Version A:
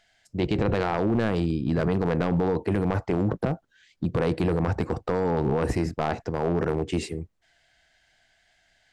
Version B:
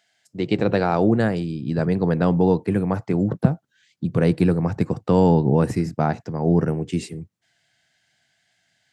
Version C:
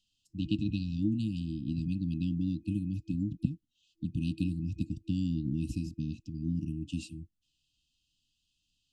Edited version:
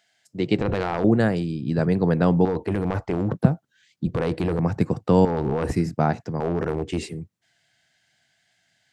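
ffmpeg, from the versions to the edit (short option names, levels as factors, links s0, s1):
-filter_complex "[0:a]asplit=5[s0][s1][s2][s3][s4];[1:a]asplit=6[s5][s6][s7][s8][s9][s10];[s5]atrim=end=0.612[s11];[s0]atrim=start=0.608:end=1.042[s12];[s6]atrim=start=1.038:end=2.452[s13];[s1]atrim=start=2.448:end=3.322[s14];[s7]atrim=start=3.318:end=4.072[s15];[s2]atrim=start=4.068:end=4.592[s16];[s8]atrim=start=4.588:end=5.252[s17];[s3]atrim=start=5.248:end=5.722[s18];[s9]atrim=start=5.718:end=6.402[s19];[s4]atrim=start=6.398:end=7.112[s20];[s10]atrim=start=7.108[s21];[s11][s12]acrossfade=d=0.004:c1=hsin:c2=hsin[s22];[s22][s13]acrossfade=d=0.004:c1=hsin:c2=hsin[s23];[s23][s14]acrossfade=d=0.004:c1=hsin:c2=hsin[s24];[s24][s15]acrossfade=d=0.004:c1=hsin:c2=hsin[s25];[s25][s16]acrossfade=d=0.004:c1=hsin:c2=hsin[s26];[s26][s17]acrossfade=d=0.004:c1=hsin:c2=hsin[s27];[s27][s18]acrossfade=d=0.004:c1=hsin:c2=hsin[s28];[s28][s19]acrossfade=d=0.004:c1=hsin:c2=hsin[s29];[s29][s20]acrossfade=d=0.004:c1=hsin:c2=hsin[s30];[s30][s21]acrossfade=d=0.004:c1=hsin:c2=hsin"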